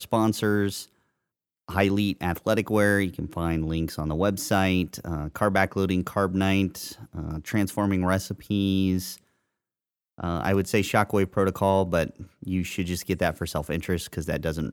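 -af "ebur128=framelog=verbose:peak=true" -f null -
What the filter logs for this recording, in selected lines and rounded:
Integrated loudness:
  I:         -25.7 LUFS
  Threshold: -36.1 LUFS
Loudness range:
  LRA:         2.3 LU
  Threshold: -46.2 LUFS
  LRA low:   -27.6 LUFS
  LRA high:  -25.3 LUFS
True peak:
  Peak:       -4.5 dBFS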